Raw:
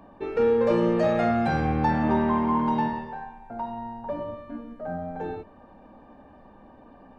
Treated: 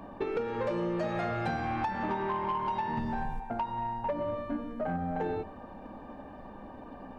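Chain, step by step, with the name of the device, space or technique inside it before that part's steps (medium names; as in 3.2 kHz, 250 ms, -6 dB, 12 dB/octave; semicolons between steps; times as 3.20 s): de-hum 77.63 Hz, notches 10; 2.97–3.40 s: tone controls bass +13 dB, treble +12 dB; drum-bus smash (transient shaper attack +5 dB, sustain +1 dB; compression 12:1, threshold -31 dBFS, peak gain reduction 15 dB; saturation -28 dBFS, distortion -18 dB); trim +4.5 dB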